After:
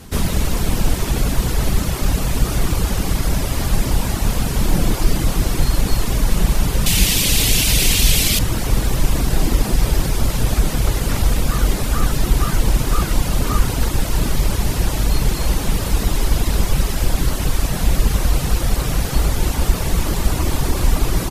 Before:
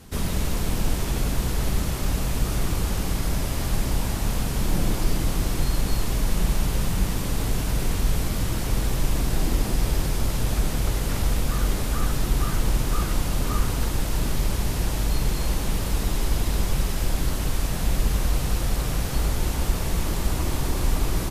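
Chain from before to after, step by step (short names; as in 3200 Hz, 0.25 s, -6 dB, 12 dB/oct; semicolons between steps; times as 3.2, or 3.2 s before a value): reverb removal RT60 0.64 s; 6.86–8.39 resonant high shelf 1900 Hz +11.5 dB, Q 1.5; gain +8 dB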